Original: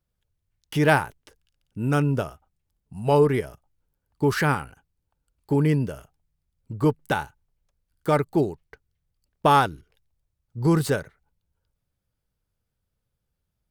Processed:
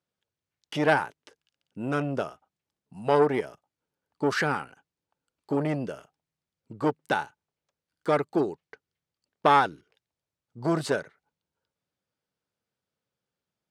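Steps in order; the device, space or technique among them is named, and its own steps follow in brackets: public-address speaker with an overloaded transformer (core saturation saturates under 860 Hz; BPF 230–6800 Hz)

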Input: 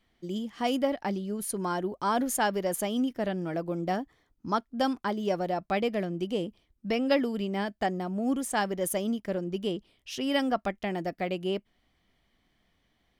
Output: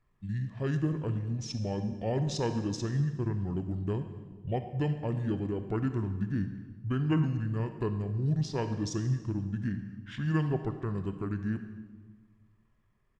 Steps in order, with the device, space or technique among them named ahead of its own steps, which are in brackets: monster voice (pitch shift -10 st; low shelf 210 Hz +9 dB; reverb RT60 1.4 s, pre-delay 27 ms, DRR 8.5 dB); gain -6.5 dB

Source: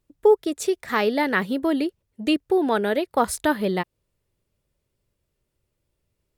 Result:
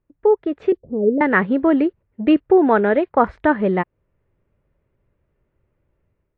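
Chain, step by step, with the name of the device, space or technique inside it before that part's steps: 0.72–1.21 elliptic low-pass 510 Hz, stop band 70 dB; action camera in a waterproof case (LPF 2100 Hz 24 dB/oct; AGC gain up to 8.5 dB; AAC 48 kbps 22050 Hz)

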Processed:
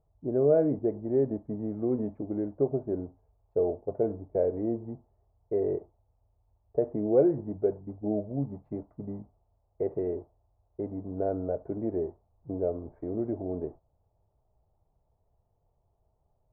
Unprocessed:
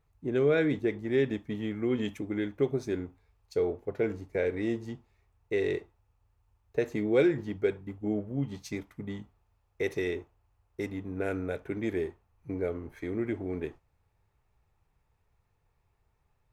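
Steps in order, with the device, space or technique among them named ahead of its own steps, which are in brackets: under water (LPF 890 Hz 24 dB/oct; bell 640 Hz +10.5 dB 0.37 oct)

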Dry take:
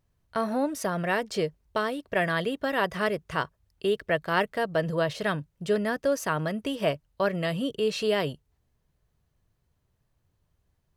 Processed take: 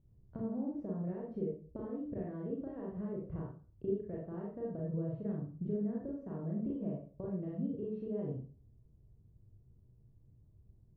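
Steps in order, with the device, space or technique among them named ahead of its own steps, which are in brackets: television next door (compressor 4:1, threshold -42 dBFS, peak gain reduction 19 dB; LPF 280 Hz 12 dB/oct; reverb RT60 0.40 s, pre-delay 32 ms, DRR -4 dB); gain +5 dB

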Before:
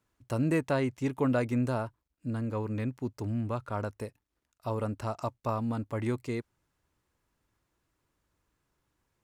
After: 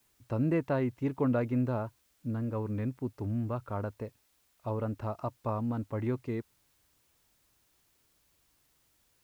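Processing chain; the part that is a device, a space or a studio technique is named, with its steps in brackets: cassette deck with a dirty head (tape spacing loss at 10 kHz 28 dB; wow and flutter; white noise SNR 37 dB)

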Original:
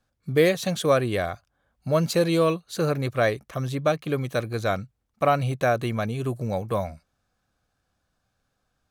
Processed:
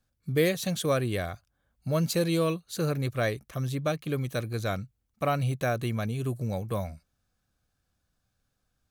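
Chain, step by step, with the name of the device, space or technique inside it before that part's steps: smiley-face EQ (low shelf 150 Hz +4 dB; bell 810 Hz -4.5 dB 2 oct; high shelf 9500 Hz +7.5 dB); gain -3.5 dB

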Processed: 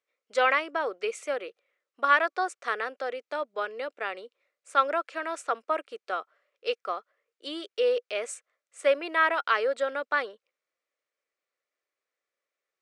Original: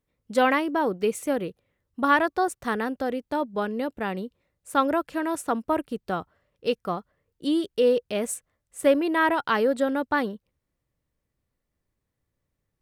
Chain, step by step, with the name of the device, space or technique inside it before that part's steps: phone speaker on a table (speaker cabinet 470–7700 Hz, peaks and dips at 890 Hz -8 dB, 1300 Hz +5 dB, 2300 Hz +6 dB); gain -1.5 dB

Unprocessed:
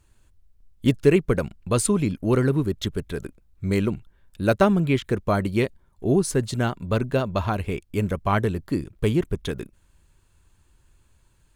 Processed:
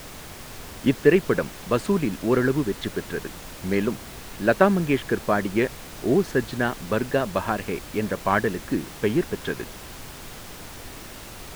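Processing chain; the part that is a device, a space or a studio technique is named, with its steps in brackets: horn gramophone (BPF 190–3100 Hz; bell 1700 Hz +10 dB 0.2 oct; wow and flutter; pink noise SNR 14 dB); gain +1 dB

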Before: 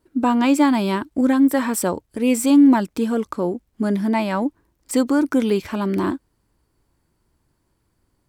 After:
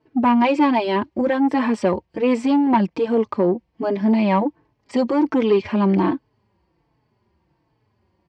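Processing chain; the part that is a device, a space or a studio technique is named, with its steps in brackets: barber-pole flanger into a guitar amplifier (endless flanger 4.1 ms -1.3 Hz; soft clip -16.5 dBFS, distortion -14 dB; speaker cabinet 95–4200 Hz, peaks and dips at 270 Hz -5 dB, 900 Hz +3 dB, 1400 Hz -9 dB, 3700 Hz -8 dB); gain +8 dB

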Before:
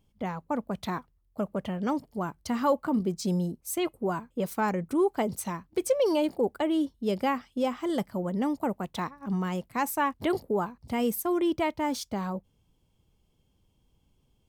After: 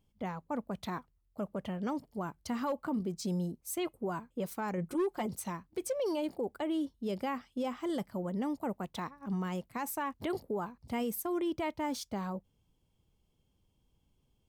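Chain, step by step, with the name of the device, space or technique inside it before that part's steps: 4.77–5.26 comb 5.6 ms, depth 93%; clipper into limiter (hard clip -17 dBFS, distortion -22 dB; limiter -22 dBFS, peak gain reduction 5 dB); gain -5 dB

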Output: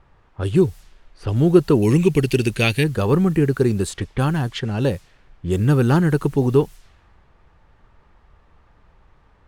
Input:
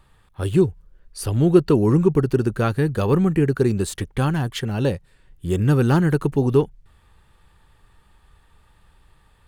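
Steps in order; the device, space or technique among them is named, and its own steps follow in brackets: 1.82–2.84 resonant high shelf 1800 Hz +10.5 dB, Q 3; cassette deck with a dynamic noise filter (white noise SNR 32 dB; low-pass opened by the level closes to 1300 Hz, open at -17.5 dBFS); gain +1 dB

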